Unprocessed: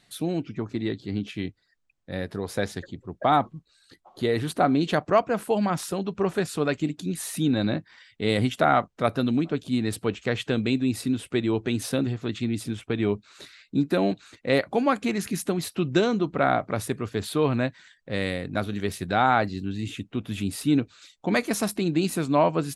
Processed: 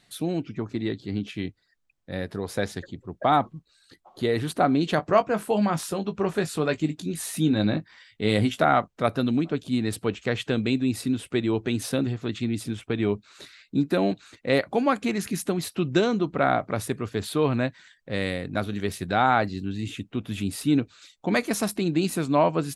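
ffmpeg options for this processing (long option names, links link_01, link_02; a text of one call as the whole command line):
ffmpeg -i in.wav -filter_complex "[0:a]asettb=1/sr,asplit=3[link_01][link_02][link_03];[link_01]atrim=end=4.964[link_04];[link_02]atrim=start=4.96:end=8.64,asetpts=PTS-STARTPTS,afade=type=in:duration=0.004:curve=qsin,afade=type=out:start_time=3.676:duration=0.004:curve=qsin,asplit=2[link_05][link_06];[link_06]adelay=19,volume=-9dB[link_07];[link_05][link_07]amix=inputs=2:normalize=0,atrim=end_sample=162288[link_08];[link_03]atrim=start=8.636[link_09];[link_04][link_08]acrossfade=duration=0.004:curve1=hsin:curve2=qsin[link_10];[link_10][link_09]acrossfade=duration=0.004:curve1=qsin:curve2=hsin" out.wav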